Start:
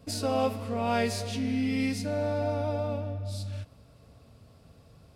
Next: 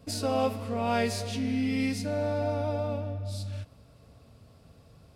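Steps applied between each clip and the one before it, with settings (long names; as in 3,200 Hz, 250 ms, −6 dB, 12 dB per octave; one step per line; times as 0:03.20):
no processing that can be heard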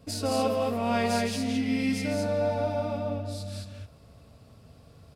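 loudspeakers that aren't time-aligned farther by 56 metres −7 dB, 75 metres −3 dB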